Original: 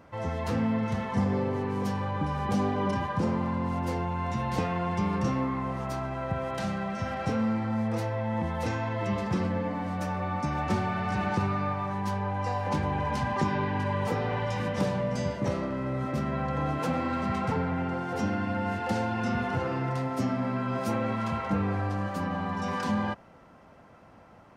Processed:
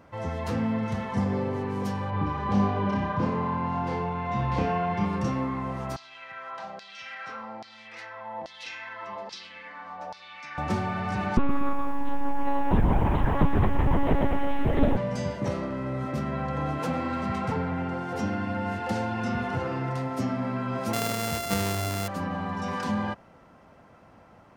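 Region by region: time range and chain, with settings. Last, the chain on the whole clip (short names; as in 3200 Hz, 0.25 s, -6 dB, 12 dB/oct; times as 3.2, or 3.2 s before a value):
2.1–5.05 LPF 3900 Hz + flutter echo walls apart 5.1 m, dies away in 0.47 s
5.96–10.58 LFO band-pass saw down 1.2 Hz 630–4800 Hz + bell 4900 Hz +11.5 dB 2.1 oct
11.37–14.97 low shelf 410 Hz +10.5 dB + monotone LPC vocoder at 8 kHz 280 Hz + lo-fi delay 0.119 s, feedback 35%, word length 8-bit, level -11.5 dB
20.93–22.08 sample sorter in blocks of 64 samples + high shelf 4700 Hz +6 dB
whole clip: dry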